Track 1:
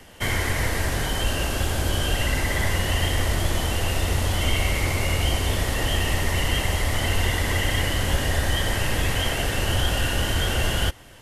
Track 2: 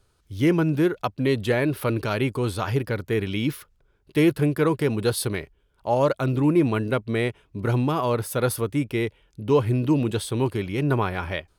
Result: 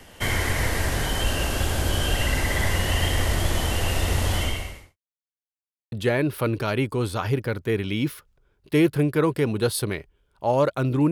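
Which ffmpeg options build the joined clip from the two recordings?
-filter_complex "[0:a]apad=whole_dur=11.11,atrim=end=11.11,asplit=2[s0][s1];[s0]atrim=end=4.97,asetpts=PTS-STARTPTS,afade=t=out:st=4.37:d=0.6:c=qua[s2];[s1]atrim=start=4.97:end=5.92,asetpts=PTS-STARTPTS,volume=0[s3];[1:a]atrim=start=1.35:end=6.54,asetpts=PTS-STARTPTS,afade=t=in:d=0.004:c=hsin[s4];[s2][s3][s4]concat=n=3:v=0:a=1"

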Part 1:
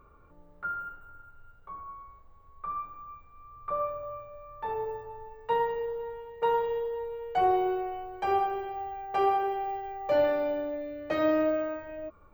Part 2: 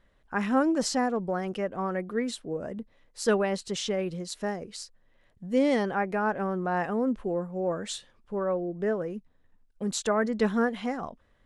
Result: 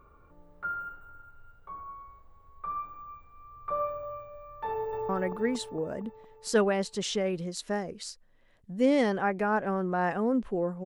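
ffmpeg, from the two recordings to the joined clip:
-filter_complex "[0:a]apad=whole_dur=10.85,atrim=end=10.85,atrim=end=5.092[s0];[1:a]atrim=start=1.818:end=7.58[s1];[s0][s1]acrossfade=d=0.004:c1=hsin:c2=hsin,asplit=2[s2][s3];[s3]afade=t=in:st=4.69:d=0.01,afade=t=out:st=5.09:d=0.01,aecho=0:1:230|460|690|920|1150|1380|1610|1840|2070|2300|2530:0.749894|0.487431|0.31683|0.20594|0.133861|0.0870095|0.0565562|0.0367615|0.023895|0.0155317|0.0100956[s4];[s2][s4]amix=inputs=2:normalize=0"

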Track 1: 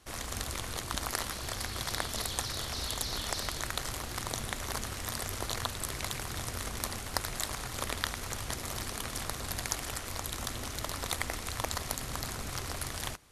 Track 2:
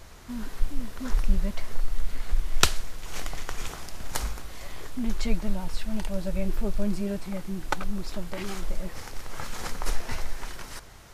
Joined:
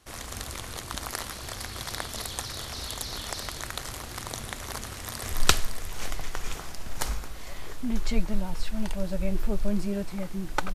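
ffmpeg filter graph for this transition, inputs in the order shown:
-filter_complex "[0:a]apad=whole_dur=10.74,atrim=end=10.74,atrim=end=5.322[s0];[1:a]atrim=start=2.458:end=7.88[s1];[s0][s1]acrossfade=d=0.004:c1=hsin:c2=hsin,asplit=2[s2][s3];[s3]afade=t=in:st=4.94:d=0.01,afade=t=out:st=5.32:d=0.01,aecho=0:1:280|560|840|1120|1400|1680|1960|2240:0.944061|0.519233|0.285578|0.157068|0.0863875|0.0475131|0.0261322|0.0143727[s4];[s2][s4]amix=inputs=2:normalize=0"

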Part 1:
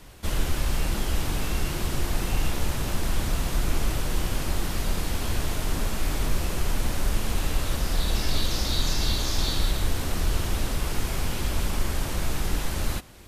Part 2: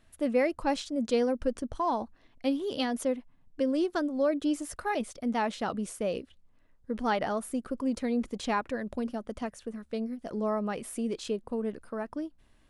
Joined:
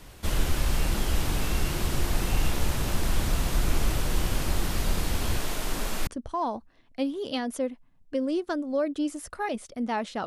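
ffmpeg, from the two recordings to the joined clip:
-filter_complex "[0:a]asettb=1/sr,asplit=3[s0][s1][s2];[s0]atrim=end=5.374[s3];[s1]atrim=start=5.37:end=6.07,asetpts=PTS-STARTPTS,afade=t=in:d=0.004:c=qsin,afade=t=out:st=0.696:d=0.004:c=qsin,equalizer=f=72:t=o:w=2:g=-13.5[s4];[s2]atrim=start=6.066[s5];[s3][s4]acrossfade=d=0.004:c1=hsin:c2=qsin[s6];[s6][s5]acrossfade=d=0.004:c1=qsin:c2=hsin,apad=whole_dur=10.26,atrim=end=10.26,atrim=end=6.072[s7];[1:a]atrim=start=1.528:end=5.72[s8];[s7][s8]acrossfade=d=0.004:c1=hsin:c2=hsin"

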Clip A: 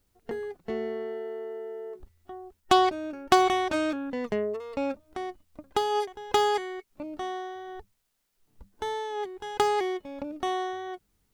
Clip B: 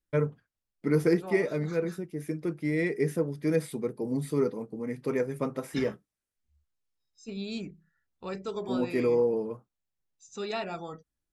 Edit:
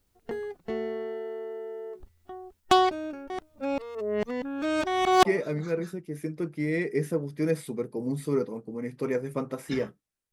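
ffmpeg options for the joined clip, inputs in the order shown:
-filter_complex "[0:a]apad=whole_dur=10.32,atrim=end=10.32,asplit=2[s0][s1];[s0]atrim=end=3.302[s2];[s1]atrim=start=3.298:end=5.252,asetpts=PTS-STARTPTS,areverse[s3];[1:a]atrim=start=1.298:end=6.37[s4];[s2][s3]acrossfade=d=0.004:c1=hsin:c2=hsin[s5];[s5][s4]acrossfade=d=0.004:c1=hsin:c2=hsin"

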